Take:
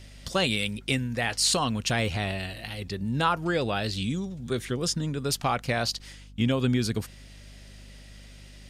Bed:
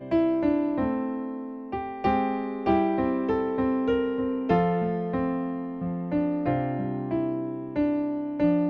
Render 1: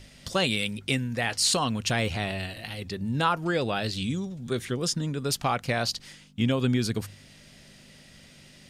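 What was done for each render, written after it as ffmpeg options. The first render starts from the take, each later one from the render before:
-af "bandreject=f=50:t=h:w=4,bandreject=f=100:t=h:w=4"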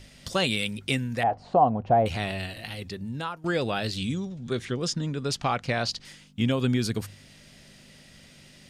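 -filter_complex "[0:a]asettb=1/sr,asplit=3[a][b][c];[a]atrim=end=1.234[d];[b]atrim=start=1.23:end=2.06,asetpts=PTS-STARTPTS,afade=t=in:d=0.004:c=qsin,afade=t=out:st=0.826:d=0.004:c=qsin,lowpass=f=740:t=q:w=5.6[e];[c]atrim=start=2.056[f];[d][e]acrossfade=d=0.004:c1=hsin:c2=qsin[g];[g][f]acrossfade=d=0.004:c1=qsin:c2=hsin,asettb=1/sr,asplit=3[h][i][j];[h]atrim=end=4.144[k];[i]atrim=start=4.14:end=6.05,asetpts=PTS-STARTPTS,afade=t=in:d=0.004:c=qsin,afade=t=out:st=1.906:d=0.004:c=qsin,lowpass=6.6k[l];[j]atrim=start=6.046[m];[k][l]acrossfade=d=0.004:c1=hsin:c2=qsin[n];[n][m]acrossfade=d=0.004:c1=qsin:c2=hsin,asplit=2[o][p];[o]atrim=end=3.44,asetpts=PTS-STARTPTS,afade=t=out:st=2.74:d=0.7:silence=0.149624[q];[p]atrim=start=3.44,asetpts=PTS-STARTPTS,afade=t=in:d=0.004:c=hsin:silence=0.149624[r];[q][r]concat=n=2:v=0:a=1"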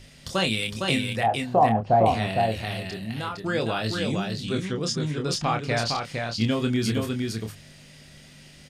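-filter_complex "[0:a]asplit=2[a][b];[b]adelay=27,volume=-6dB[c];[a][c]amix=inputs=2:normalize=0,aecho=1:1:459:0.631"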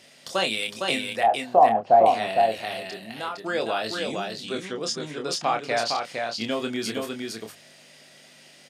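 -af "highpass=330,equalizer=f=680:w=2.8:g=4.5"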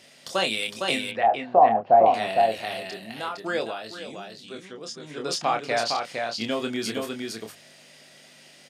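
-filter_complex "[0:a]asettb=1/sr,asplit=3[a][b][c];[a]atrim=end=1.114[d];[b]atrim=start=1.11:end=2.14,asetpts=PTS-STARTPTS,afade=t=in:d=0.004:c=qsin,afade=t=out:st=1.026:d=0.004:c=qsin,lowpass=2.5k[e];[c]atrim=start=2.136[f];[d][e]acrossfade=d=0.004:c1=hsin:c2=qsin[g];[g][f]acrossfade=d=0.004:c1=qsin:c2=hsin,asplit=3[h][i][j];[h]atrim=end=3.76,asetpts=PTS-STARTPTS,afade=t=out:st=3.56:d=0.2:silence=0.375837[k];[i]atrim=start=3.76:end=5.03,asetpts=PTS-STARTPTS,volume=-8.5dB[l];[j]atrim=start=5.03,asetpts=PTS-STARTPTS,afade=t=in:d=0.2:silence=0.375837[m];[k][l][m]concat=n=3:v=0:a=1"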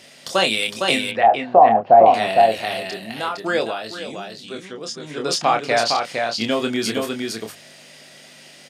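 -af "volume=6.5dB,alimiter=limit=-2dB:level=0:latency=1"

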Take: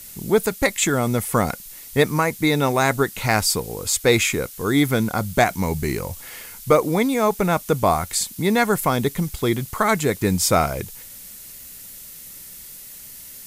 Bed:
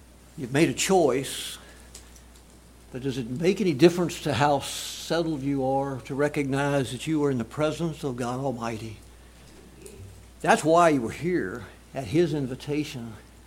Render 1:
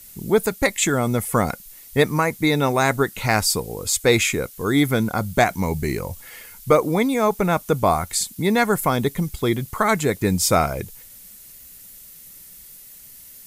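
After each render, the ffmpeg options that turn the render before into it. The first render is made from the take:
-af "afftdn=nr=6:nf=-40"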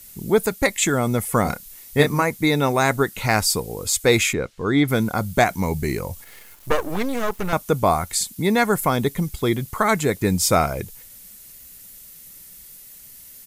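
-filter_complex "[0:a]asplit=3[a][b][c];[a]afade=t=out:st=1.44:d=0.02[d];[b]asplit=2[e][f];[f]adelay=28,volume=-5.5dB[g];[e][g]amix=inputs=2:normalize=0,afade=t=in:st=1.44:d=0.02,afade=t=out:st=2.21:d=0.02[h];[c]afade=t=in:st=2.21:d=0.02[i];[d][h][i]amix=inputs=3:normalize=0,asettb=1/sr,asplit=3[j][k][l];[j]atrim=end=4.334[m];[k]atrim=start=4.33:end=4.88,asetpts=PTS-STARTPTS,afade=t=in:d=0.004:c=qsin,afade=t=out:st=0.546:d=0.004:c=qsin,lowpass=3.8k[n];[l]atrim=start=4.876[o];[m][n]acrossfade=d=0.004:c1=hsin:c2=qsin[p];[p][o]acrossfade=d=0.004:c1=qsin:c2=hsin,asettb=1/sr,asplit=3[q][r][s];[q]atrim=end=6.244[t];[r]atrim=start=6.24:end=7.53,asetpts=PTS-STARTPTS,afade=t=in:d=0.004:c=qsin,afade=t=out:st=1.286:d=0.004:c=qsin,aeval=exprs='max(val(0),0)':c=same[u];[s]atrim=start=7.526[v];[t][u]acrossfade=d=0.004:c1=hsin:c2=qsin[w];[w][v]acrossfade=d=0.004:c1=qsin:c2=hsin"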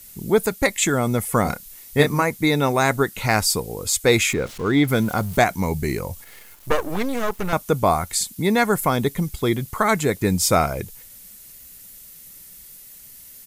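-filter_complex "[0:a]asettb=1/sr,asplit=3[a][b][c];[a]atrim=end=4.294[d];[b]atrim=start=4.29:end=5.37,asetpts=PTS-STARTPTS,afade=t=in:d=0.004:c=qsin,afade=t=out:st=1.076:d=0.004:c=qsin,aeval=exprs='val(0)+0.5*0.0188*sgn(val(0))':c=same[e];[c]atrim=start=5.366[f];[d][e]acrossfade=d=0.004:c1=hsin:c2=qsin[g];[g][f]acrossfade=d=0.004:c1=qsin:c2=hsin"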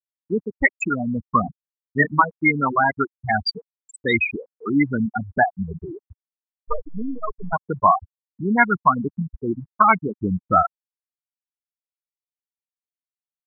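-af "afftfilt=real='re*gte(hypot(re,im),0.447)':imag='im*gte(hypot(re,im),0.447)':win_size=1024:overlap=0.75,equalizer=f=125:t=o:w=1:g=-6,equalizer=f=250:t=o:w=1:g=4,equalizer=f=500:t=o:w=1:g=-12,equalizer=f=1k:t=o:w=1:g=11,equalizer=f=2k:t=o:w=1:g=7,equalizer=f=4k:t=o:w=1:g=4,equalizer=f=8k:t=o:w=1:g=-5"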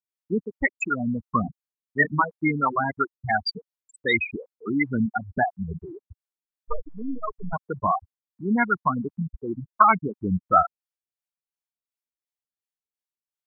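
-filter_complex "[0:a]acrossover=split=420[a][b];[a]aeval=exprs='val(0)*(1-0.7/2+0.7/2*cos(2*PI*2.8*n/s))':c=same[c];[b]aeval=exprs='val(0)*(1-0.7/2-0.7/2*cos(2*PI*2.8*n/s))':c=same[d];[c][d]amix=inputs=2:normalize=0"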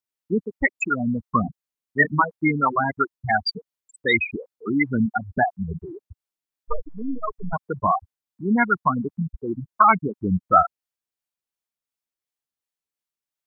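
-af "volume=2.5dB,alimiter=limit=-3dB:level=0:latency=1"

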